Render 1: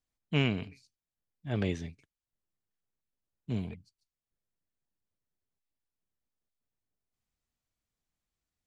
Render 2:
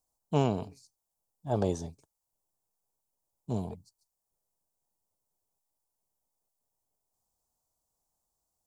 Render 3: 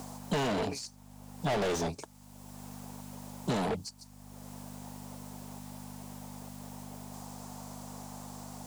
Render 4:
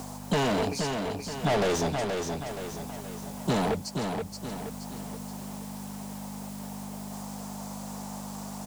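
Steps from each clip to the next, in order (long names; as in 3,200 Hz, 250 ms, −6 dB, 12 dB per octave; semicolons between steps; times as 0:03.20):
drawn EQ curve 270 Hz 0 dB, 890 Hz +13 dB, 2,100 Hz −18 dB, 5,100 Hz +5 dB, 7,900 Hz +11 dB
mains hum 50 Hz, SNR 32 dB; mid-hump overdrive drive 41 dB, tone 2,800 Hz, clips at −12.5 dBFS; multiband upward and downward compressor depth 70%; level −4 dB
repeating echo 475 ms, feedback 46%, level −5 dB; level +4.5 dB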